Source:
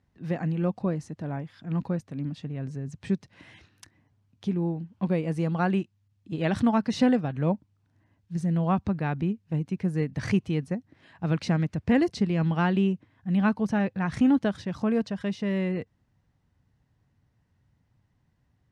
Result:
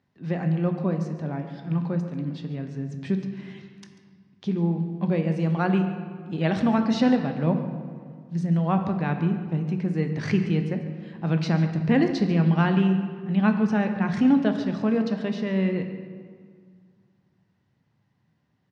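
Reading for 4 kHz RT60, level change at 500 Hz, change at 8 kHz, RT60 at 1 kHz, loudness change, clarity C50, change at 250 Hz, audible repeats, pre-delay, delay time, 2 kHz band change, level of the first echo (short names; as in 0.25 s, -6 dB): 1.2 s, +2.0 dB, n/a, 1.9 s, +3.0 dB, 7.5 dB, +3.0 dB, 1, 5 ms, 0.141 s, +2.5 dB, -15.5 dB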